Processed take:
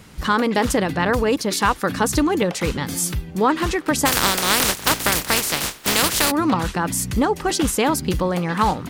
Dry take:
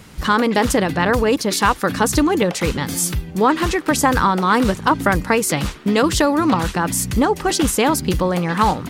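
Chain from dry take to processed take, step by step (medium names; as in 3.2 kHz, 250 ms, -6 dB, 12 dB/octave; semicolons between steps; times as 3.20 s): 4.05–6.30 s: spectral contrast reduction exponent 0.28; trim -2.5 dB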